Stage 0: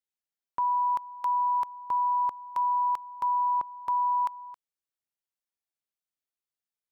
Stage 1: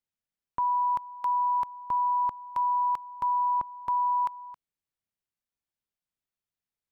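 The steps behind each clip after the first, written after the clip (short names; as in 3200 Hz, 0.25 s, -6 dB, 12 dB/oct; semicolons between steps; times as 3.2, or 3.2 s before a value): tone controls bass +9 dB, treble -4 dB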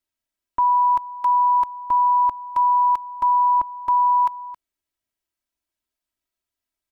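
comb 3.1 ms, depth 94%; gain +3 dB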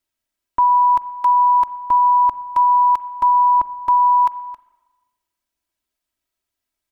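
spring tank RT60 1.3 s, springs 39/44/58 ms, chirp 50 ms, DRR 16.5 dB; gain +4 dB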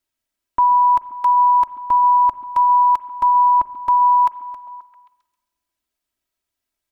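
delay with a stepping band-pass 0.133 s, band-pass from 260 Hz, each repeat 0.7 oct, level -9.5 dB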